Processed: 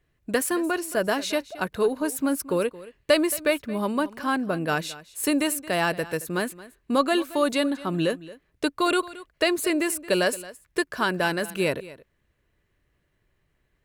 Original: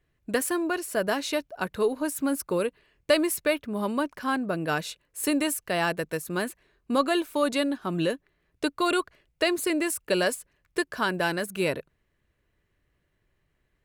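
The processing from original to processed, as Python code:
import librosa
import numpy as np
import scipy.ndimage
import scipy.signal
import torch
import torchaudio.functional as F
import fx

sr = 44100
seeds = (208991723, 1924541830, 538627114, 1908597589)

y = x + 10.0 ** (-18.0 / 20.0) * np.pad(x, (int(223 * sr / 1000.0), 0))[:len(x)]
y = y * 10.0 ** (2.0 / 20.0)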